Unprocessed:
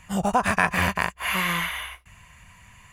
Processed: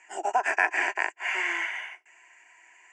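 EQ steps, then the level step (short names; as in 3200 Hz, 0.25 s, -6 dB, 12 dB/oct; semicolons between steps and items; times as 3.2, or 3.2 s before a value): Chebyshev band-pass 320–8000 Hz, order 5; fixed phaser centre 780 Hz, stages 8; 0.0 dB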